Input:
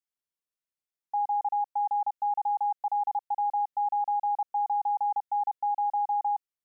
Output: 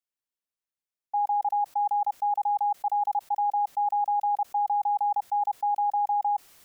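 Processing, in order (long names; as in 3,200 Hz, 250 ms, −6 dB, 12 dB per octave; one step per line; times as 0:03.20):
dynamic equaliser 740 Hz, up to +5 dB, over −39 dBFS, Q 2.4
level that may fall only so fast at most 27 dB per second
level −2 dB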